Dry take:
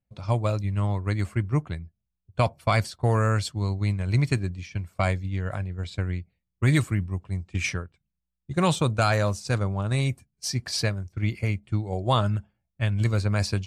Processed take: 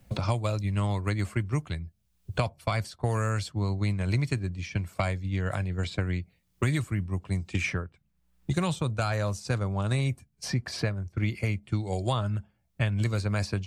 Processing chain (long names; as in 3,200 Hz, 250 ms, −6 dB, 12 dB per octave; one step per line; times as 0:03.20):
multiband upward and downward compressor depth 100%
level −4 dB